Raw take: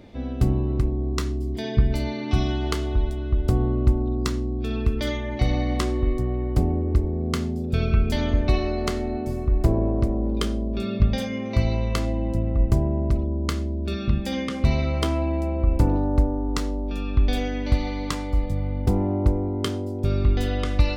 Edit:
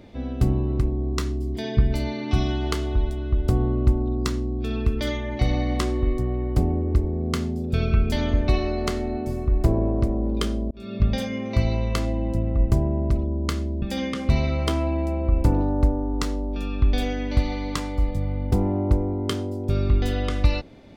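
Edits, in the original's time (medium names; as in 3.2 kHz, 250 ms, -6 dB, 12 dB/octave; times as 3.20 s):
10.71–11.09 s: fade in
13.82–14.17 s: delete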